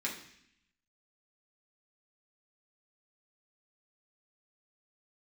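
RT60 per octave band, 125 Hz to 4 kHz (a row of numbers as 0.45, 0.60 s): 1.0, 0.95, 0.65, 0.70, 0.90, 0.85 s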